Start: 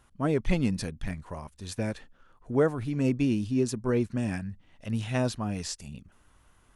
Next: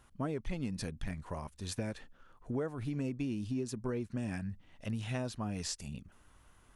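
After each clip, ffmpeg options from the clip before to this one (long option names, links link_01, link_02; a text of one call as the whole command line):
ffmpeg -i in.wav -af "acompressor=threshold=-32dB:ratio=6,volume=-1dB" out.wav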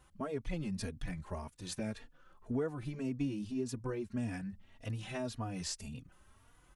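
ffmpeg -i in.wav -filter_complex "[0:a]asplit=2[link_01][link_02];[link_02]adelay=3.5,afreqshift=1.8[link_03];[link_01][link_03]amix=inputs=2:normalize=1,volume=2dB" out.wav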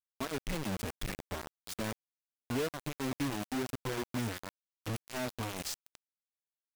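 ffmpeg -i in.wav -af "acrusher=bits=5:mix=0:aa=0.000001" out.wav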